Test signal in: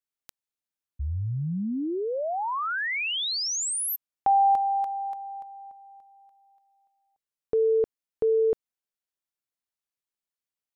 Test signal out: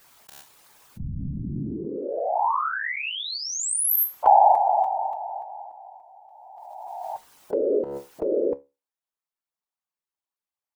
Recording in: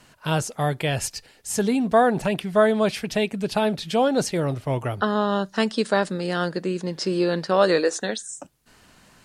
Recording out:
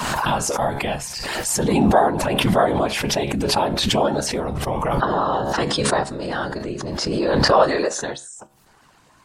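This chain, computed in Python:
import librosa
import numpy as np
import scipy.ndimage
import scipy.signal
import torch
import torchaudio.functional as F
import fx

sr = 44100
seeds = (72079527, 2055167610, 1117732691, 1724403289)

y = fx.spec_quant(x, sr, step_db=15)
y = fx.peak_eq(y, sr, hz=930.0, db=9.5, octaves=0.99)
y = fx.whisperise(y, sr, seeds[0])
y = fx.comb_fb(y, sr, f0_hz=70.0, decay_s=0.25, harmonics='all', damping=0.0, mix_pct=50)
y = fx.pre_swell(y, sr, db_per_s=22.0)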